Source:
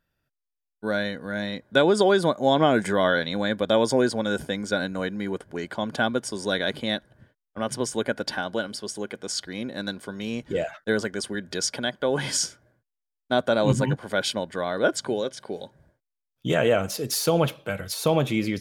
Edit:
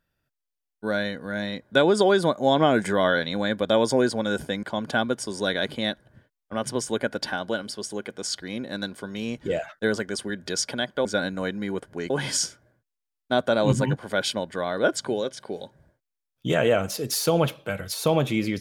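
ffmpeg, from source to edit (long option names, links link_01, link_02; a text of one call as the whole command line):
ffmpeg -i in.wav -filter_complex "[0:a]asplit=4[link_01][link_02][link_03][link_04];[link_01]atrim=end=4.632[link_05];[link_02]atrim=start=5.678:end=12.102[link_06];[link_03]atrim=start=4.628:end=5.682[link_07];[link_04]atrim=start=12.098[link_08];[link_05][link_06]acrossfade=duration=0.004:curve1=hsin:curve2=hsin[link_09];[link_09][link_07]acrossfade=duration=0.004:curve1=hsin:curve2=hsin[link_10];[link_10][link_08]acrossfade=duration=0.004:curve1=hsin:curve2=hsin" out.wav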